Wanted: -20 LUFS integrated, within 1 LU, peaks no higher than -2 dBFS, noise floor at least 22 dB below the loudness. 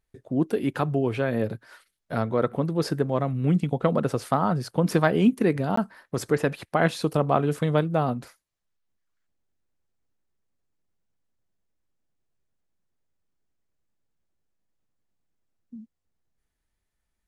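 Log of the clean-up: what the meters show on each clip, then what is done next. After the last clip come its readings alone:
dropouts 1; longest dropout 14 ms; loudness -25.0 LUFS; peak level -5.5 dBFS; loudness target -20.0 LUFS
-> interpolate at 5.76 s, 14 ms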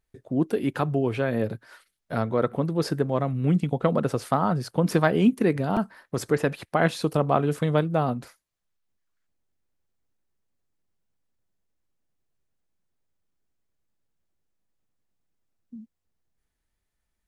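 dropouts 0; loudness -25.0 LUFS; peak level -5.5 dBFS; loudness target -20.0 LUFS
-> trim +5 dB; peak limiter -2 dBFS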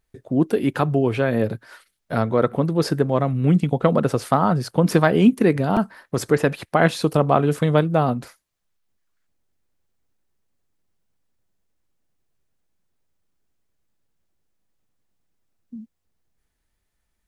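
loudness -20.0 LUFS; peak level -2.0 dBFS; noise floor -76 dBFS

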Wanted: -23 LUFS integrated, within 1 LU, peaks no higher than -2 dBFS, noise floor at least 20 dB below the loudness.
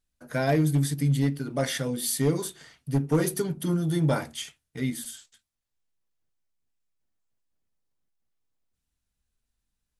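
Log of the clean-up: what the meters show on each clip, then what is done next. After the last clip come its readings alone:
clipped samples 0.3%; clipping level -16.0 dBFS; loudness -27.0 LUFS; peak level -16.0 dBFS; loudness target -23.0 LUFS
-> clip repair -16 dBFS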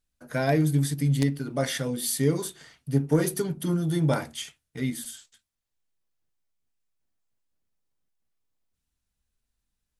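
clipped samples 0.0%; loudness -26.5 LUFS; peak level -7.0 dBFS; loudness target -23.0 LUFS
-> trim +3.5 dB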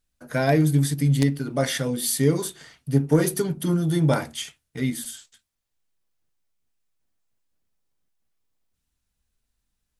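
loudness -23.0 LUFS; peak level -3.5 dBFS; noise floor -79 dBFS

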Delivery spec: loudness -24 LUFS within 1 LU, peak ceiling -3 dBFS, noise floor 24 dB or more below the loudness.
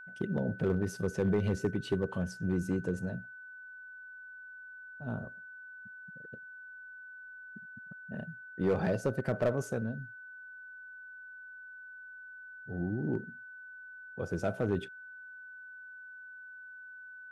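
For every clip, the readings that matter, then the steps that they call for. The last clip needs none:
clipped samples 0.4%; clipping level -22.0 dBFS; steady tone 1.5 kHz; tone level -46 dBFS; loudness -34.5 LUFS; peak level -22.0 dBFS; loudness target -24.0 LUFS
-> clip repair -22 dBFS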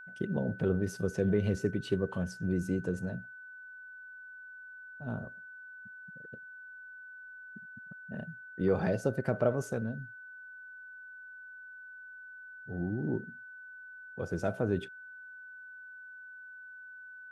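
clipped samples 0.0%; steady tone 1.5 kHz; tone level -46 dBFS
-> band-stop 1.5 kHz, Q 30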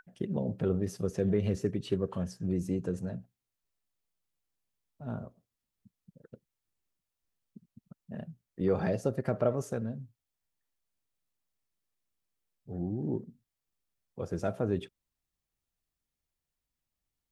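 steady tone not found; loudness -33.5 LUFS; peak level -14.5 dBFS; loudness target -24.0 LUFS
-> trim +9.5 dB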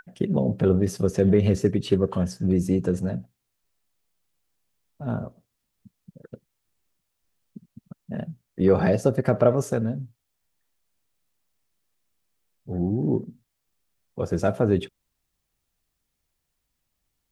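loudness -24.0 LUFS; peak level -5.0 dBFS; noise floor -79 dBFS

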